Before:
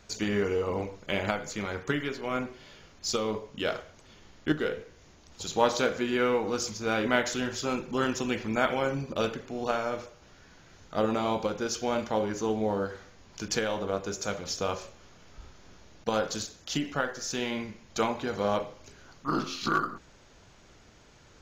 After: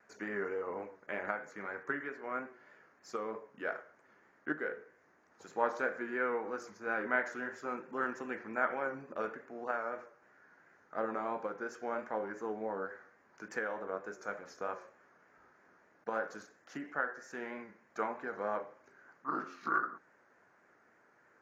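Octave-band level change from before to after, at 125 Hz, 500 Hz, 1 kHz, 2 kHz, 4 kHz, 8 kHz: −20.5, −9.0, −6.0, −3.5, −25.5, −22.5 decibels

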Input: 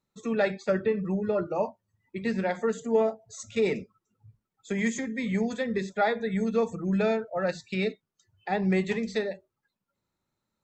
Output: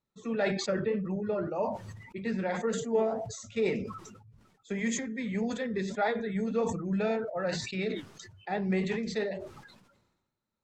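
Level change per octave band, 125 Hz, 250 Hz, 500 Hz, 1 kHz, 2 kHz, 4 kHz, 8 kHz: −2.5, −3.0, −3.5, −3.0, −3.5, +0.5, +2.5 decibels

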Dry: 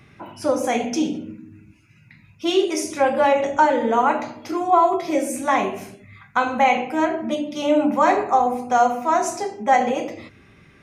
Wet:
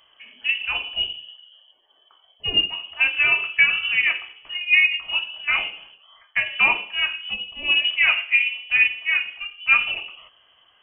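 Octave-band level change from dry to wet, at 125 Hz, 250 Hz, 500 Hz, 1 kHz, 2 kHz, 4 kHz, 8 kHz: can't be measured, below −20 dB, −24.5 dB, −17.5 dB, +10.5 dB, +12.5 dB, below −40 dB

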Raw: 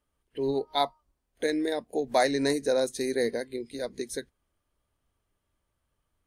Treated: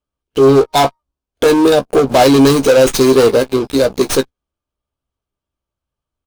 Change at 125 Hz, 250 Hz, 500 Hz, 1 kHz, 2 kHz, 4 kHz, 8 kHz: +24.0, +19.0, +18.0, +15.5, +13.5, +15.0, +17.0 decibels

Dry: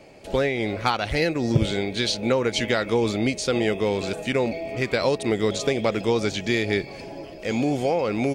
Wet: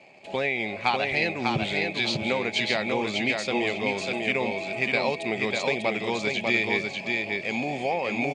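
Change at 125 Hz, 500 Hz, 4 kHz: −8.5, −5.0, −0.5 decibels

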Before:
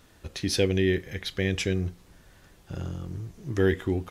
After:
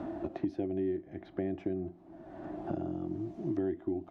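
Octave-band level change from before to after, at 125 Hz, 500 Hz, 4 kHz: −13.5 dB, −7.5 dB, below −30 dB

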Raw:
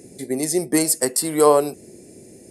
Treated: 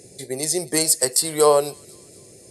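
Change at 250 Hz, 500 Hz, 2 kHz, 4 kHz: −7.0, −1.0, −0.5, +5.0 decibels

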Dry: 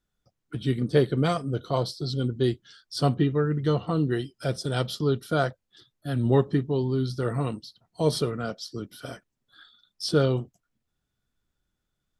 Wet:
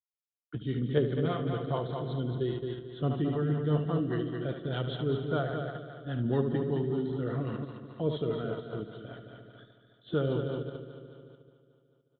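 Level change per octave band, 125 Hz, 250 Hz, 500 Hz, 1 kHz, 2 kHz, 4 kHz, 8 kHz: −5.0 dB, −4.5 dB, −5.0 dB, −7.0 dB, −6.5 dB, −10.0 dB, below −35 dB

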